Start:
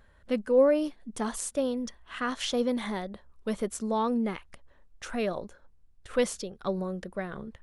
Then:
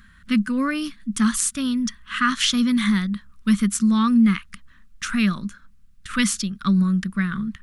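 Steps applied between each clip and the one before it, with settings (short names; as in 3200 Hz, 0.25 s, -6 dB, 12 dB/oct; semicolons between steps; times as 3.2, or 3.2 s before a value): EQ curve 130 Hz 0 dB, 200 Hz +11 dB, 490 Hz -23 dB, 800 Hz -20 dB, 1200 Hz +5 dB; gain +7.5 dB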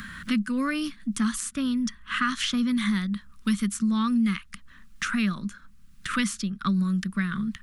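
three-band squash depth 70%; gain -5.5 dB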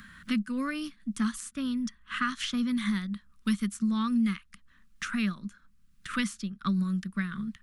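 upward expander 1.5:1, over -37 dBFS; gain -2.5 dB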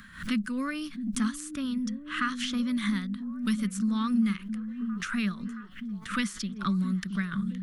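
delay with a stepping band-pass 0.67 s, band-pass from 210 Hz, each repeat 0.7 oct, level -7 dB; backwards sustainer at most 130 dB/s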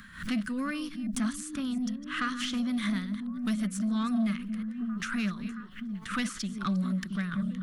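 reverse delay 0.178 s, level -14 dB; soft clip -22.5 dBFS, distortion -18 dB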